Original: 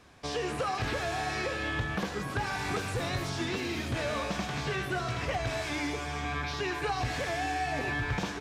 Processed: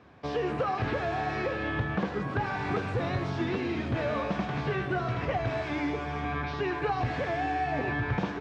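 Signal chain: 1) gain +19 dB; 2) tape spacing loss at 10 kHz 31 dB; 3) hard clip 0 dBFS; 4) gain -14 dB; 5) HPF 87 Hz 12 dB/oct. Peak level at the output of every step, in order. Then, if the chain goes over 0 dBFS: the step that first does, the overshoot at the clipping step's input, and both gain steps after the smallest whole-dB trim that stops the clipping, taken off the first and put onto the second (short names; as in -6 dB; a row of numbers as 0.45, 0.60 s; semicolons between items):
-0.5, -2.0, -2.0, -16.0, -15.5 dBFS; no overload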